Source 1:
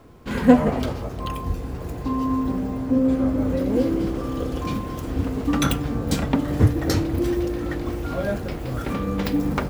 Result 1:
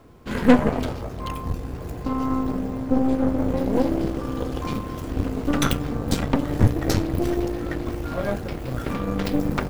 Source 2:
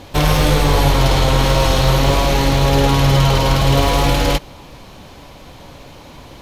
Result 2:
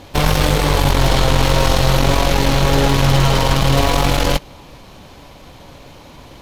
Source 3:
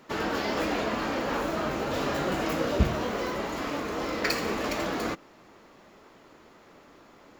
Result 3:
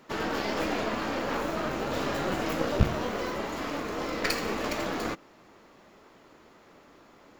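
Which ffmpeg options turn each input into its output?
ffmpeg -i in.wav -af "aeval=exprs='0.891*(cos(1*acos(clip(val(0)/0.891,-1,1)))-cos(1*PI/2))+0.112*(cos(8*acos(clip(val(0)/0.891,-1,1)))-cos(8*PI/2))':channel_layout=same,volume=-1.5dB" out.wav

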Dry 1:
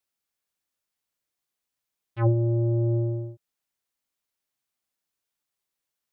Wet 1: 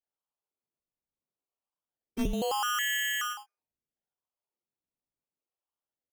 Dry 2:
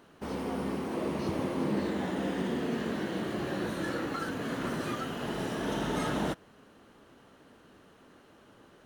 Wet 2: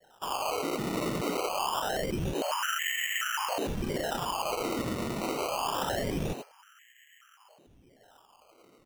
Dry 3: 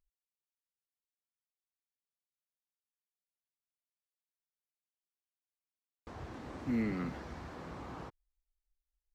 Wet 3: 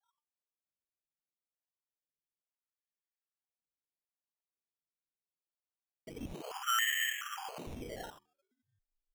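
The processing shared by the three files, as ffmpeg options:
ffmpeg -i in.wav -filter_complex "[0:a]asplit=2[link_01][link_02];[link_02]acrusher=bits=6:mix=0:aa=0.000001,volume=-7dB[link_03];[link_01][link_03]amix=inputs=2:normalize=0,highshelf=frequency=2300:gain=-9,bandreject=frequency=1200:width=15,asplit=2[link_04][link_05];[link_05]aecho=0:1:88:0.299[link_06];[link_04][link_06]amix=inputs=2:normalize=0,adynamicsmooth=sensitivity=2:basefreq=870,adynamicequalizer=threshold=0.00794:dfrequency=670:dqfactor=1.1:tfrequency=670:tqfactor=1.1:attack=5:release=100:ratio=0.375:range=2:mode=boostabove:tftype=bell,lowpass=frequency=2800:width_type=q:width=0.5098,lowpass=frequency=2800:width_type=q:width=0.6013,lowpass=frequency=2800:width_type=q:width=0.9,lowpass=frequency=2800:width_type=q:width=2.563,afreqshift=-3300,bandreject=frequency=79.43:width_type=h:width=4,bandreject=frequency=158.86:width_type=h:width=4,bandreject=frequency=238.29:width_type=h:width=4,bandreject=frequency=317.72:width_type=h:width=4,bandreject=frequency=397.15:width_type=h:width=4,bandreject=frequency=476.58:width_type=h:width=4,bandreject=frequency=556.01:width_type=h:width=4,bandreject=frequency=635.44:width_type=h:width=4,bandreject=frequency=714.87:width_type=h:width=4,bandreject=frequency=794.3:width_type=h:width=4,bandreject=frequency=873.73:width_type=h:width=4,bandreject=frequency=953.16:width_type=h:width=4,bandreject=frequency=1032.59:width_type=h:width=4,bandreject=frequency=1112.02:width_type=h:width=4,bandreject=frequency=1191.45:width_type=h:width=4,bandreject=frequency=1270.88:width_type=h:width=4,bandreject=frequency=1350.31:width_type=h:width=4,bandreject=frequency=1429.74:width_type=h:width=4,bandreject=frequency=1509.17:width_type=h:width=4,bandreject=frequency=1588.6:width_type=h:width=4,bandreject=frequency=1668.03:width_type=h:width=4,bandreject=frequency=1747.46:width_type=h:width=4,bandreject=frequency=1826.89:width_type=h:width=4,bandreject=frequency=1906.32:width_type=h:width=4,bandreject=frequency=1985.75:width_type=h:width=4,bandreject=frequency=2065.18:width_type=h:width=4,bandreject=frequency=2144.61:width_type=h:width=4,bandreject=frequency=2224.04:width_type=h:width=4,bandreject=frequency=2303.47:width_type=h:width=4,bandreject=frequency=2382.9:width_type=h:width=4,bandreject=frequency=2462.33:width_type=h:width=4,acrusher=samples=18:mix=1:aa=0.000001:lfo=1:lforange=18:lforate=0.25,acompressor=threshold=-27dB:ratio=10" out.wav

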